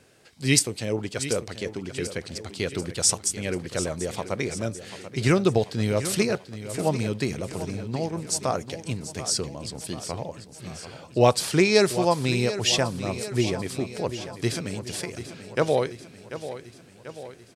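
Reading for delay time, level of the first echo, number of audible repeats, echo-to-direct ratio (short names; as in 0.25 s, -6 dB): 0.739 s, -12.5 dB, 5, -10.5 dB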